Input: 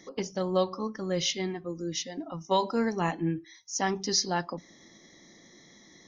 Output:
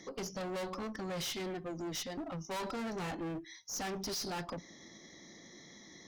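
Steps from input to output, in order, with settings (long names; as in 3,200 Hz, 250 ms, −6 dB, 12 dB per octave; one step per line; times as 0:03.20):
tube saturation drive 34 dB, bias 0.25
asymmetric clip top −41 dBFS, bottom −35 dBFS
level +1 dB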